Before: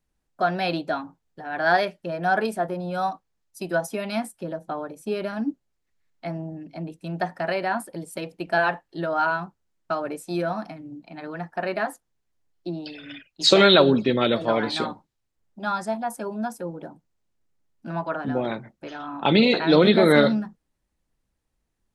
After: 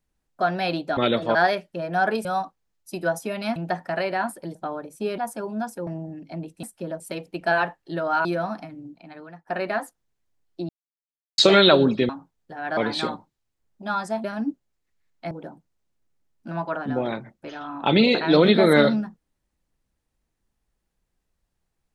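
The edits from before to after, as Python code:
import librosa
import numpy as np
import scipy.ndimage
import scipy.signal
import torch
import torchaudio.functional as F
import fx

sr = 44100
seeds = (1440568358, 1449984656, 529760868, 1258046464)

y = fx.edit(x, sr, fx.swap(start_s=0.97, length_s=0.68, other_s=14.16, other_length_s=0.38),
    fx.cut(start_s=2.55, length_s=0.38),
    fx.swap(start_s=4.24, length_s=0.37, other_s=7.07, other_length_s=0.99),
    fx.swap(start_s=5.24, length_s=1.07, other_s=16.01, other_length_s=0.69),
    fx.cut(start_s=9.31, length_s=1.01),
    fx.fade_out_to(start_s=10.84, length_s=0.7, floor_db=-18.0),
    fx.silence(start_s=12.76, length_s=0.69), tone=tone)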